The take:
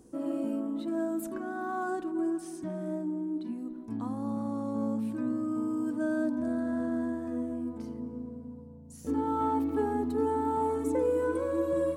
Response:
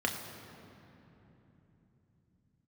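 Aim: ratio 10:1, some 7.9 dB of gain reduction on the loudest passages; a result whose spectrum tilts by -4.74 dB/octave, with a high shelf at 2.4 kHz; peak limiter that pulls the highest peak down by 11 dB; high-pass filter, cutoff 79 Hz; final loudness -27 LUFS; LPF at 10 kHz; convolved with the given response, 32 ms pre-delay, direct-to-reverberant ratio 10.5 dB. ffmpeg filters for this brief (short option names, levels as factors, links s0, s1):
-filter_complex "[0:a]highpass=79,lowpass=10000,highshelf=f=2400:g=-3,acompressor=threshold=0.0251:ratio=10,alimiter=level_in=4.47:limit=0.0631:level=0:latency=1,volume=0.224,asplit=2[s0][s1];[1:a]atrim=start_sample=2205,adelay=32[s2];[s1][s2]afir=irnorm=-1:irlink=0,volume=0.126[s3];[s0][s3]amix=inputs=2:normalize=0,volume=6.31"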